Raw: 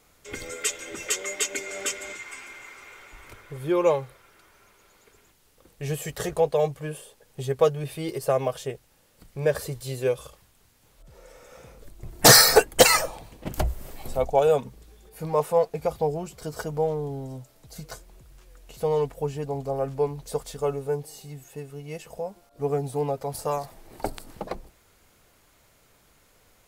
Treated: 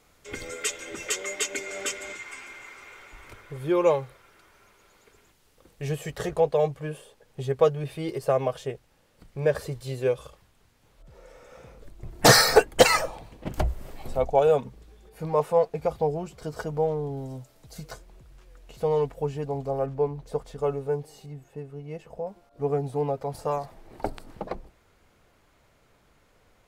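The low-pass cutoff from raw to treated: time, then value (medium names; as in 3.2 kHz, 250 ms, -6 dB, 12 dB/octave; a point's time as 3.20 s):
low-pass 6 dB/octave
7.2 kHz
from 5.89 s 3.5 kHz
from 17.17 s 8.6 kHz
from 17.92 s 3.8 kHz
from 19.86 s 1.4 kHz
from 20.58 s 2.6 kHz
from 21.26 s 1.1 kHz
from 22.27 s 2.5 kHz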